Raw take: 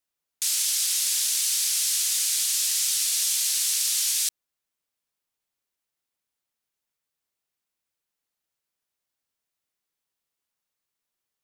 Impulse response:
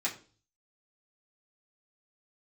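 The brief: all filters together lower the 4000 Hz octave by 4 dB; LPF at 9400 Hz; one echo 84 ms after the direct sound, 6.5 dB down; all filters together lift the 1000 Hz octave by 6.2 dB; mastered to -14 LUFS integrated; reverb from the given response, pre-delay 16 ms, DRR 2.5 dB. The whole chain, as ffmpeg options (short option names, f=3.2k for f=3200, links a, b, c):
-filter_complex "[0:a]lowpass=9.4k,equalizer=f=1k:t=o:g=8.5,equalizer=f=4k:t=o:g=-5.5,aecho=1:1:84:0.473,asplit=2[a][b];[1:a]atrim=start_sample=2205,adelay=16[c];[b][c]afir=irnorm=-1:irlink=0,volume=-8dB[d];[a][d]amix=inputs=2:normalize=0,volume=9dB"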